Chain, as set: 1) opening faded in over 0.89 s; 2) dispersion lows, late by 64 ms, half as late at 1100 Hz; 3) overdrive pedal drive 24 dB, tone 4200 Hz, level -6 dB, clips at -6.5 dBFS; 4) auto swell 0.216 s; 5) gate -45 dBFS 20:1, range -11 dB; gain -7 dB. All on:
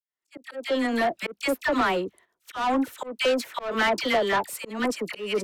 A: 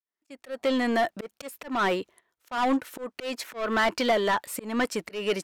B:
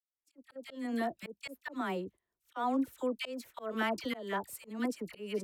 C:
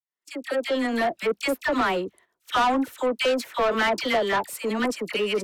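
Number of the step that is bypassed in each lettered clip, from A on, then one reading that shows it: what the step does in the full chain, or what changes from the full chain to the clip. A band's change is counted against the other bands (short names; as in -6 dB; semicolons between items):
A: 2, 4 kHz band -2.0 dB; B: 3, 250 Hz band +5.0 dB; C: 4, momentary loudness spread change -2 LU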